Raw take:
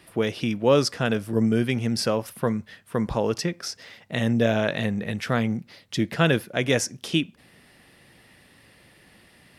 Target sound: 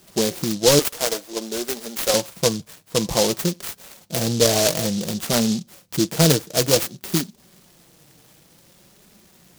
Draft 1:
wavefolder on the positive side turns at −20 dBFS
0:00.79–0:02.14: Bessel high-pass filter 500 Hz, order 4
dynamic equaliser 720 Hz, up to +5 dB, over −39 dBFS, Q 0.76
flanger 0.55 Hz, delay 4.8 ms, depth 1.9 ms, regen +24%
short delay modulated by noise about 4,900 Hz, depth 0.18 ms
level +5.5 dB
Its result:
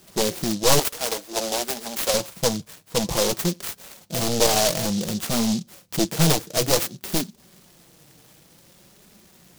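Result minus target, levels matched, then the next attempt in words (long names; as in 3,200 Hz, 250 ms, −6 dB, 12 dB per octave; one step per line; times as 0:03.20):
wavefolder on the positive side: distortion +19 dB
wavefolder on the positive side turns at −11 dBFS
0:00.79–0:02.14: Bessel high-pass filter 500 Hz, order 4
dynamic equaliser 720 Hz, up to +5 dB, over −39 dBFS, Q 0.76
flanger 0.55 Hz, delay 4.8 ms, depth 1.9 ms, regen +24%
short delay modulated by noise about 4,900 Hz, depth 0.18 ms
level +5.5 dB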